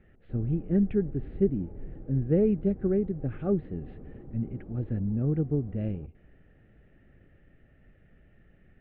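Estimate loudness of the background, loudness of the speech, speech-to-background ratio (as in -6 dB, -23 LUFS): -46.5 LUFS, -29.5 LUFS, 17.0 dB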